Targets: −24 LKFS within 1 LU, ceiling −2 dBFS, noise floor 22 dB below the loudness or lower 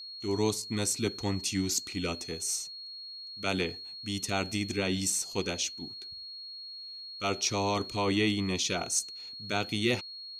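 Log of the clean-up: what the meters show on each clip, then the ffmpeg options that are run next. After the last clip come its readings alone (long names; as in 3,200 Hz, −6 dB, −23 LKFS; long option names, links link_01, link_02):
interfering tone 4,300 Hz; level of the tone −41 dBFS; integrated loudness −31.5 LKFS; sample peak −14.0 dBFS; target loudness −24.0 LKFS
→ -af "bandreject=frequency=4300:width=30"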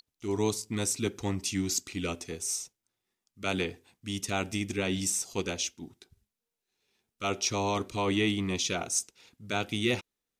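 interfering tone none found; integrated loudness −31.0 LKFS; sample peak −14.0 dBFS; target loudness −24.0 LKFS
→ -af "volume=7dB"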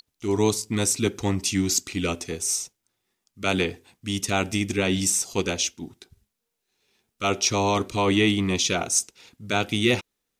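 integrated loudness −24.0 LKFS; sample peak −7.0 dBFS; background noise floor −81 dBFS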